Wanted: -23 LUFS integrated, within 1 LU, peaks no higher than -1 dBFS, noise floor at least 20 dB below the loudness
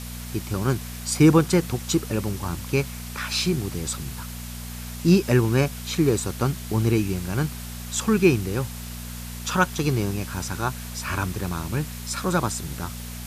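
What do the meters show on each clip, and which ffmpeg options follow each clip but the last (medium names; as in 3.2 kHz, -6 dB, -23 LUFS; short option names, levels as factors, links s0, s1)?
hum 60 Hz; highest harmonic 240 Hz; hum level -34 dBFS; noise floor -35 dBFS; noise floor target -45 dBFS; loudness -24.5 LUFS; peak level -4.5 dBFS; loudness target -23.0 LUFS
-> -af "bandreject=f=60:t=h:w=4,bandreject=f=120:t=h:w=4,bandreject=f=180:t=h:w=4,bandreject=f=240:t=h:w=4"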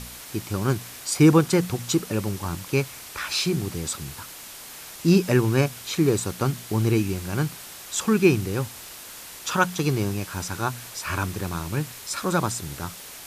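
hum not found; noise floor -41 dBFS; noise floor target -45 dBFS
-> -af "afftdn=nr=6:nf=-41"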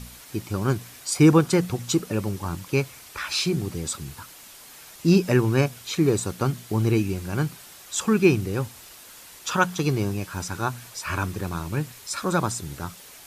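noise floor -46 dBFS; loudness -24.5 LUFS; peak level -5.0 dBFS; loudness target -23.0 LUFS
-> -af "volume=1.19"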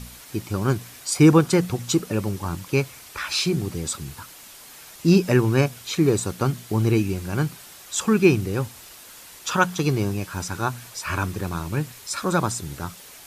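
loudness -23.0 LUFS; peak level -3.5 dBFS; noise floor -45 dBFS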